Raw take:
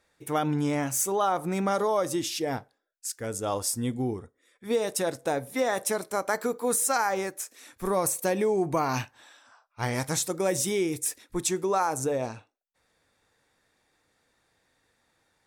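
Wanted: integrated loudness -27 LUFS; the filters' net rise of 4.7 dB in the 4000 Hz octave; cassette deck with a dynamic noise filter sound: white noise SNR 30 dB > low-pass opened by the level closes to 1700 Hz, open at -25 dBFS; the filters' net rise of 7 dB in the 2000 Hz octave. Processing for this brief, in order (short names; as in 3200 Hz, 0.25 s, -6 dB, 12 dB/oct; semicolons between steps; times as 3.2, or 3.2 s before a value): bell 2000 Hz +8 dB; bell 4000 Hz +4 dB; white noise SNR 30 dB; low-pass opened by the level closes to 1700 Hz, open at -25 dBFS; gain -0.5 dB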